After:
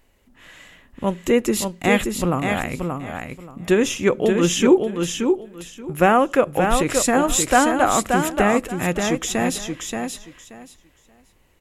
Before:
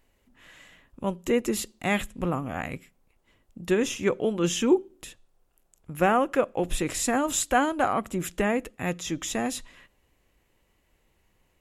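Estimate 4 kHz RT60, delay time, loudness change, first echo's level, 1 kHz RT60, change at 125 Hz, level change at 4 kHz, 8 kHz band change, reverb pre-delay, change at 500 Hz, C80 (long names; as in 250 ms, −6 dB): no reverb audible, 579 ms, +7.0 dB, −5.0 dB, no reverb audible, +7.5 dB, +7.5 dB, +7.5 dB, no reverb audible, +7.5 dB, no reverb audible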